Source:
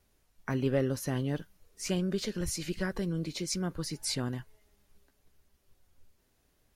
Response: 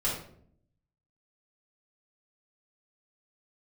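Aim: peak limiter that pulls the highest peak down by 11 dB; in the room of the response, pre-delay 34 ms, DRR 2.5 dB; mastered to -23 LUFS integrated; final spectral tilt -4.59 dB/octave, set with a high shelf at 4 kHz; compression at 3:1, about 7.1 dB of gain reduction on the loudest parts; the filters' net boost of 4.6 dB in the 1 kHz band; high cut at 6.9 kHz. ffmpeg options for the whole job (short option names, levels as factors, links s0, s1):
-filter_complex "[0:a]lowpass=6900,equalizer=f=1000:t=o:g=5.5,highshelf=f=4000:g=8.5,acompressor=threshold=0.0251:ratio=3,alimiter=level_in=1.88:limit=0.0631:level=0:latency=1,volume=0.531,asplit=2[s0][s1];[1:a]atrim=start_sample=2205,adelay=34[s2];[s1][s2]afir=irnorm=-1:irlink=0,volume=0.316[s3];[s0][s3]amix=inputs=2:normalize=0,volume=4.73"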